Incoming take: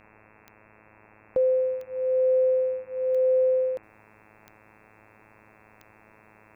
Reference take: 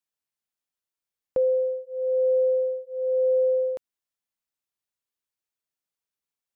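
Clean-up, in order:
click removal
hum removal 107.4 Hz, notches 25
noise reduction from a noise print 30 dB
level 0 dB, from 0:03.83 −11 dB

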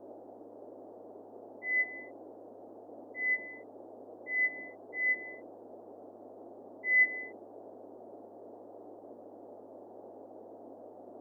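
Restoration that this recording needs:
hum removal 103.9 Hz, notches 9
noise reduction from a noise print 29 dB

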